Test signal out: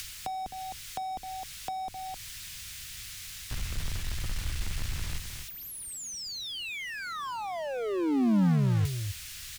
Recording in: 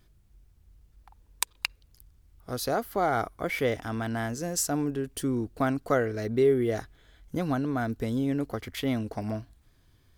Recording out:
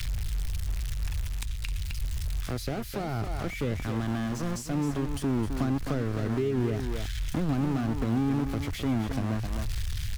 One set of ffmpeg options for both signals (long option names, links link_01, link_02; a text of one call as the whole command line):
ffmpeg -i in.wav -filter_complex "[0:a]aeval=exprs='val(0)+0.5*0.0631*sgn(val(0))':channel_layout=same,acrossover=split=120|1600[link_01][link_02][link_03];[link_02]acrusher=bits=3:mix=0:aa=0.5[link_04];[link_01][link_04][link_03]amix=inputs=3:normalize=0,aecho=1:1:260:0.335,areverse,acompressor=mode=upward:threshold=-24dB:ratio=2.5,areverse,acrusher=bits=5:mode=log:mix=0:aa=0.000001,acrossover=split=280[link_05][link_06];[link_06]acompressor=threshold=-36dB:ratio=6[link_07];[link_05][link_07]amix=inputs=2:normalize=0,highshelf=frequency=10000:gain=-9.5" out.wav